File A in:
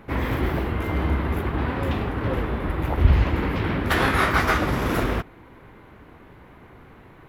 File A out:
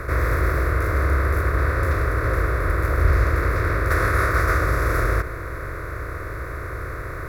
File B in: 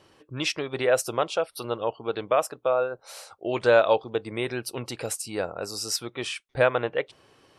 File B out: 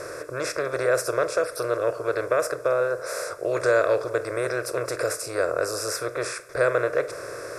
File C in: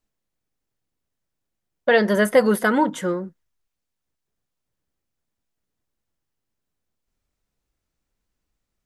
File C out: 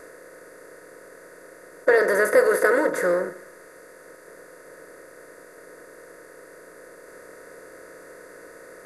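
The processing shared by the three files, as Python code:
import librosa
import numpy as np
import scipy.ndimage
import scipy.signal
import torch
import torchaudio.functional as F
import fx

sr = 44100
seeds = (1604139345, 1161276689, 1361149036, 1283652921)

y = fx.bin_compress(x, sr, power=0.4)
y = fx.fixed_phaser(y, sr, hz=830.0, stages=6)
y = fx.echo_wet_lowpass(y, sr, ms=72, feedback_pct=61, hz=2700.0, wet_db=-19.0)
y = F.gain(torch.from_numpy(y), -3.0).numpy()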